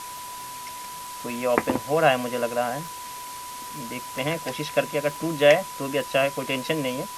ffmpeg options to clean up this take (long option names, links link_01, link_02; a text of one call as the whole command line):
ffmpeg -i in.wav -af "adeclick=threshold=4,bandreject=frequency=990:width=30,afftdn=noise_reduction=30:noise_floor=-37" out.wav